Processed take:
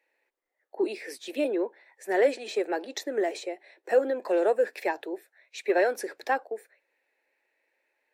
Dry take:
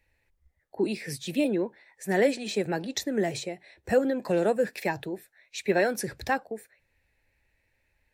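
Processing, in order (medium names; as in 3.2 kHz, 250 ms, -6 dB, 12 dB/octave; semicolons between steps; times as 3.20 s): inverse Chebyshev high-pass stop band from 170 Hz, stop band 40 dB; treble shelf 2.6 kHz -9.5 dB; in parallel at -9 dB: saturation -21 dBFS, distortion -14 dB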